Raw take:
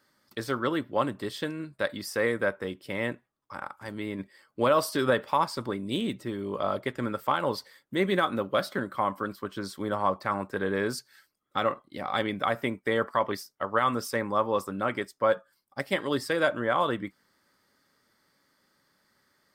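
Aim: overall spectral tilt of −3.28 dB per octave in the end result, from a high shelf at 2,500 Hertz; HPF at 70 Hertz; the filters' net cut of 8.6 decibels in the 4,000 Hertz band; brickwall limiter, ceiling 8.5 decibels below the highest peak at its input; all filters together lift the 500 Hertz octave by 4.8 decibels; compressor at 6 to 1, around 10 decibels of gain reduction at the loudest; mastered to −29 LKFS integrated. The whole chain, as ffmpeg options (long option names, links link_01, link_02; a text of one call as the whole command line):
ffmpeg -i in.wav -af "highpass=70,equalizer=frequency=500:width_type=o:gain=6,highshelf=frequency=2500:gain=-6,equalizer=frequency=4000:width_type=o:gain=-6,acompressor=threshold=-25dB:ratio=6,volume=5dB,alimiter=limit=-16.5dB:level=0:latency=1" out.wav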